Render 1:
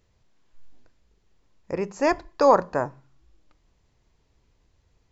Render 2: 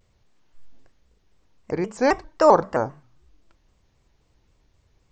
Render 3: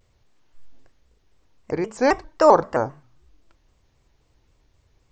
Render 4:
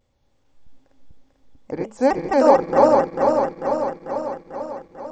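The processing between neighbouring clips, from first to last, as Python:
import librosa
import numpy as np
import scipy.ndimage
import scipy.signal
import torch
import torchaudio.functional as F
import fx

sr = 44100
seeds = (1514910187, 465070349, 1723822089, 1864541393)

y1 = fx.vibrato_shape(x, sr, shape='square', rate_hz=3.8, depth_cents=160.0)
y1 = y1 * 10.0 ** (2.0 / 20.0)
y2 = fx.peak_eq(y1, sr, hz=190.0, db=-7.0, octaves=0.23)
y2 = y2 * 10.0 ** (1.0 / 20.0)
y3 = fx.reverse_delay_fb(y2, sr, ms=222, feedback_pct=79, wet_db=-0.5)
y3 = fx.small_body(y3, sr, hz=(260.0, 540.0, 800.0, 3400.0), ring_ms=40, db=10)
y3 = y3 * 10.0 ** (-6.5 / 20.0)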